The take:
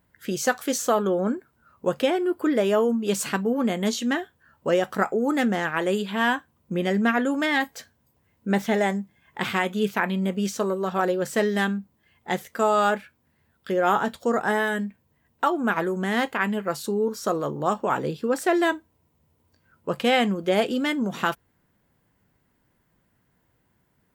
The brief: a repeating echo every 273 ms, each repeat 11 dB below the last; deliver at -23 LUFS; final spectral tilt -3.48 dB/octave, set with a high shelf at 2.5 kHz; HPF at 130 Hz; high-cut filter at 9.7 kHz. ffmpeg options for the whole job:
-af "highpass=130,lowpass=9700,highshelf=f=2500:g=7.5,aecho=1:1:273|546|819:0.282|0.0789|0.0221,volume=1.06"

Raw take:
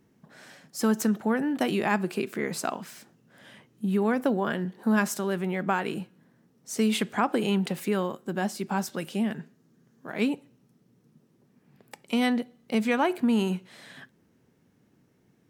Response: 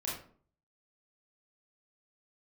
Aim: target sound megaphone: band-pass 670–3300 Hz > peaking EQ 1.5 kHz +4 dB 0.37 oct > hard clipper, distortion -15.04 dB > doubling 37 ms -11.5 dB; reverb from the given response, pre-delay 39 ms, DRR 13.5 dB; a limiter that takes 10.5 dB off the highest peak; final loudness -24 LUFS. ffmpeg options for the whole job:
-filter_complex "[0:a]alimiter=limit=0.0944:level=0:latency=1,asplit=2[s0][s1];[1:a]atrim=start_sample=2205,adelay=39[s2];[s1][s2]afir=irnorm=-1:irlink=0,volume=0.158[s3];[s0][s3]amix=inputs=2:normalize=0,highpass=670,lowpass=3300,equalizer=f=1500:t=o:w=0.37:g=4,asoftclip=type=hard:threshold=0.0376,asplit=2[s4][s5];[s5]adelay=37,volume=0.266[s6];[s4][s6]amix=inputs=2:normalize=0,volume=5.31"

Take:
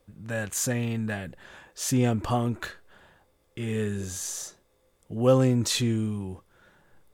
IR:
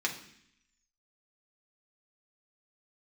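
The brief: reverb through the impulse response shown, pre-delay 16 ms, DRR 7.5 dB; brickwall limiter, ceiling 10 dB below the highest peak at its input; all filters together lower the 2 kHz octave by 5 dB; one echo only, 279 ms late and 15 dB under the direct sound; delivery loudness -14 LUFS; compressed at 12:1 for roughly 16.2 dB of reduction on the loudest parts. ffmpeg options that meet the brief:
-filter_complex "[0:a]equalizer=f=2000:t=o:g=-6.5,acompressor=threshold=0.0282:ratio=12,alimiter=level_in=2.51:limit=0.0631:level=0:latency=1,volume=0.398,aecho=1:1:279:0.178,asplit=2[s0][s1];[1:a]atrim=start_sample=2205,adelay=16[s2];[s1][s2]afir=irnorm=-1:irlink=0,volume=0.2[s3];[s0][s3]amix=inputs=2:normalize=0,volume=21.1"

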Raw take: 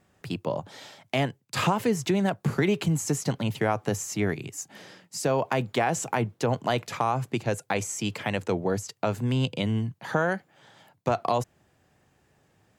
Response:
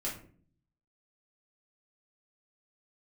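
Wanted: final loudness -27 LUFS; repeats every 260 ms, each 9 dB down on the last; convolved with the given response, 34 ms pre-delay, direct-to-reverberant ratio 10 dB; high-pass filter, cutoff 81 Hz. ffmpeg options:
-filter_complex "[0:a]highpass=81,aecho=1:1:260|520|780|1040:0.355|0.124|0.0435|0.0152,asplit=2[s0][s1];[1:a]atrim=start_sample=2205,adelay=34[s2];[s1][s2]afir=irnorm=-1:irlink=0,volume=0.237[s3];[s0][s3]amix=inputs=2:normalize=0"

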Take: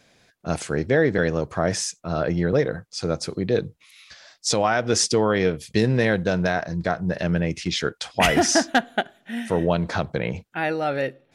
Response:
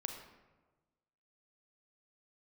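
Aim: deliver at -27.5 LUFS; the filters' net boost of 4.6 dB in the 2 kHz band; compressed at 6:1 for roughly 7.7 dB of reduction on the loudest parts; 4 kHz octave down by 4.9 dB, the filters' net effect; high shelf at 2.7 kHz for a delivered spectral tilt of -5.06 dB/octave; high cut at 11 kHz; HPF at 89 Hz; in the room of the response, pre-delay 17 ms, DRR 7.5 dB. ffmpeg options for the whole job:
-filter_complex "[0:a]highpass=89,lowpass=11000,equalizer=f=2000:t=o:g=8.5,highshelf=f=2700:g=-4,equalizer=f=4000:t=o:g=-6,acompressor=threshold=0.0891:ratio=6,asplit=2[s0][s1];[1:a]atrim=start_sample=2205,adelay=17[s2];[s1][s2]afir=irnorm=-1:irlink=0,volume=0.447[s3];[s0][s3]amix=inputs=2:normalize=0,volume=0.891"

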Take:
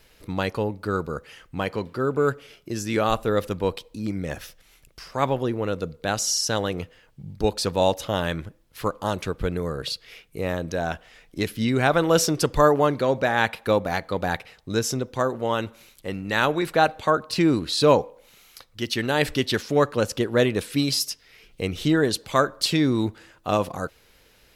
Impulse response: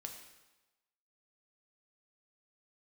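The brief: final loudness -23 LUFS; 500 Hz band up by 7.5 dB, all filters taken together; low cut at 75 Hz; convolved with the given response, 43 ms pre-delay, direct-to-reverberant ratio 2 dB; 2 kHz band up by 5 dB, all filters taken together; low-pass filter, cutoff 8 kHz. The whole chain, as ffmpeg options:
-filter_complex "[0:a]highpass=75,lowpass=8000,equalizer=f=500:t=o:g=8.5,equalizer=f=2000:t=o:g=6,asplit=2[s0][s1];[1:a]atrim=start_sample=2205,adelay=43[s2];[s1][s2]afir=irnorm=-1:irlink=0,volume=1.19[s3];[s0][s3]amix=inputs=2:normalize=0,volume=0.501"

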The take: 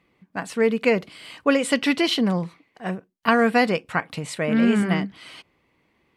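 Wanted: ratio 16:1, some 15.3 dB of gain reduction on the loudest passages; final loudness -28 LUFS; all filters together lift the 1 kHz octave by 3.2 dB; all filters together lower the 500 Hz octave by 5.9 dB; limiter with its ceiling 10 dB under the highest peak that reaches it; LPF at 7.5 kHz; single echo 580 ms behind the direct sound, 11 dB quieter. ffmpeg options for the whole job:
-af "lowpass=7500,equalizer=f=500:t=o:g=-9,equalizer=f=1000:t=o:g=7.5,acompressor=threshold=0.0501:ratio=16,alimiter=level_in=1.06:limit=0.0631:level=0:latency=1,volume=0.944,aecho=1:1:580:0.282,volume=2.24"

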